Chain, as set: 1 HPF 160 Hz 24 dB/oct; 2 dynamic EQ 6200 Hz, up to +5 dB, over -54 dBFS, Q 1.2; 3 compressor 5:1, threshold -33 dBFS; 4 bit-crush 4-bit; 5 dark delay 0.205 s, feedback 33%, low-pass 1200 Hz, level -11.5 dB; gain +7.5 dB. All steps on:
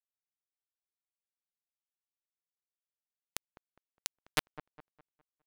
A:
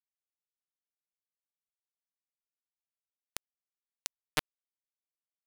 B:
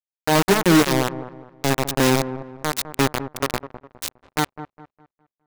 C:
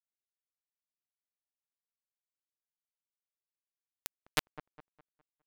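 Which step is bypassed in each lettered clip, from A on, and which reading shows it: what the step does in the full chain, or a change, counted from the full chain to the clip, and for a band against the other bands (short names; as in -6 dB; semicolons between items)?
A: 5, echo-to-direct -15.0 dB to none; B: 3, crest factor change -23.5 dB; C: 2, 8 kHz band -2.0 dB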